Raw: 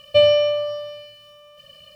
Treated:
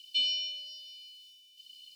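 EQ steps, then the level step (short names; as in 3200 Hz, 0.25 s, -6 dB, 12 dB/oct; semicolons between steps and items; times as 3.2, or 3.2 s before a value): steep high-pass 260 Hz 72 dB/oct; inverse Chebyshev band-stop 340–2000 Hz, stop band 40 dB; high shelf 4900 Hz -10 dB; +6.0 dB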